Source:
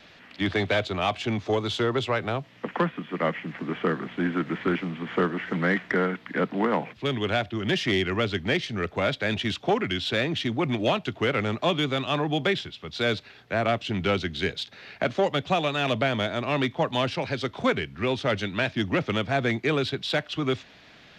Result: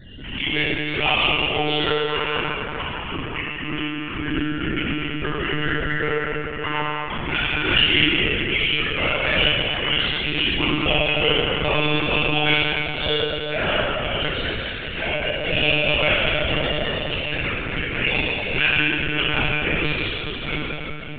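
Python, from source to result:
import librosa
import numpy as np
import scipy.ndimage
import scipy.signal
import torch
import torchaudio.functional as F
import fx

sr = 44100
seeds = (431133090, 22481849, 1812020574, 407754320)

y = fx.spec_dropout(x, sr, seeds[0], share_pct=28)
y = fx.lowpass_res(y, sr, hz=2800.0, q=8.8)
y = fx.hum_notches(y, sr, base_hz=60, count=5)
y = y + 0.93 * np.pad(y, (int(6.4 * sr / 1000.0), 0))[:len(y)]
y = fx.add_hum(y, sr, base_hz=60, snr_db=18)
y = fx.step_gate(y, sr, bpm=192, pattern='x..x.xxx', floor_db=-60.0, edge_ms=4.5)
y = fx.rev_plate(y, sr, seeds[1], rt60_s=3.6, hf_ratio=0.6, predelay_ms=0, drr_db=-9.5)
y = fx.lpc_monotone(y, sr, seeds[2], pitch_hz=150.0, order=16)
y = fx.pre_swell(y, sr, db_per_s=51.0)
y = F.gain(torch.from_numpy(y), -8.0).numpy()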